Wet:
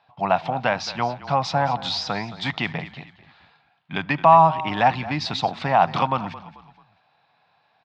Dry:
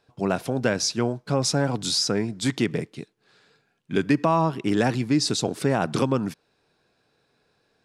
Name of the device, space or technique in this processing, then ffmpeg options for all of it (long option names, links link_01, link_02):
frequency-shifting delay pedal into a guitar cabinet: -filter_complex "[0:a]asplit=4[link_01][link_02][link_03][link_04];[link_02]adelay=219,afreqshift=-30,volume=-16dB[link_05];[link_03]adelay=438,afreqshift=-60,volume=-24.4dB[link_06];[link_04]adelay=657,afreqshift=-90,volume=-32.8dB[link_07];[link_01][link_05][link_06][link_07]amix=inputs=4:normalize=0,highpass=76,equalizer=frequency=95:width_type=q:width=4:gain=4,equalizer=frequency=160:width_type=q:width=4:gain=7,equalizer=frequency=1500:width_type=q:width=4:gain=-6,lowpass=frequency=3700:width=0.5412,lowpass=frequency=3700:width=1.3066,lowshelf=frequency=570:width_type=q:width=3:gain=-11,volume=6dB"